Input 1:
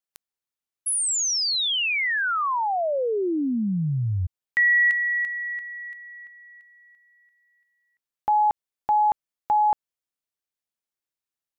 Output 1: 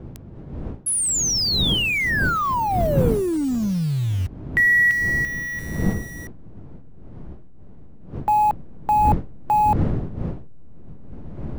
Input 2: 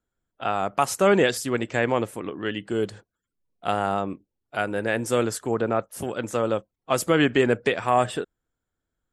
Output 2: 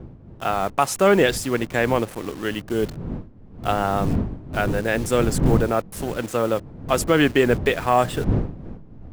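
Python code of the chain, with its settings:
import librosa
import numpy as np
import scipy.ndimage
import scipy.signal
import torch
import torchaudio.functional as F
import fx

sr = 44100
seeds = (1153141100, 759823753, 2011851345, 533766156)

y = fx.delta_hold(x, sr, step_db=-36.0)
y = fx.dmg_wind(y, sr, seeds[0], corner_hz=190.0, level_db=-31.0)
y = F.gain(torch.from_numpy(y), 2.5).numpy()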